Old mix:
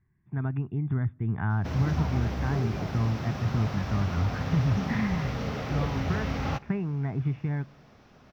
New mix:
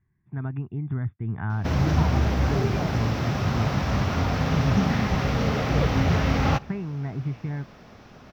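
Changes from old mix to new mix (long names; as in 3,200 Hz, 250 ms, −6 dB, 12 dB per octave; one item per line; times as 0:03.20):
speech: send off
background +8.0 dB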